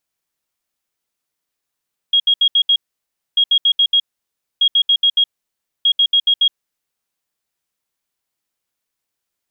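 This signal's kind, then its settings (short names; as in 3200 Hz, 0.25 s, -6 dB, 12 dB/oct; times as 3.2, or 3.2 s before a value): beep pattern sine 3280 Hz, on 0.07 s, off 0.07 s, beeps 5, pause 0.61 s, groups 4, -9.5 dBFS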